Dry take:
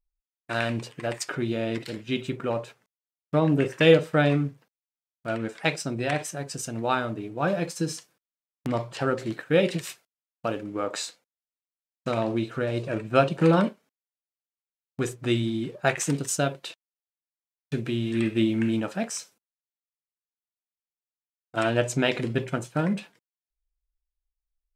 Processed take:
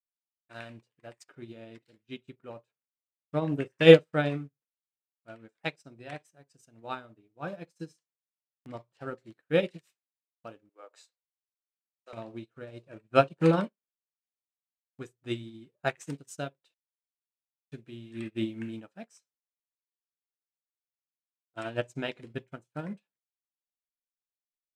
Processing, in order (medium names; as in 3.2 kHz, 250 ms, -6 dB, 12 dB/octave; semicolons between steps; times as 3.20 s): 10.69–12.13 s: high-pass 410 Hz 24 dB/octave; upward expansion 2.5:1, over -40 dBFS; trim +4 dB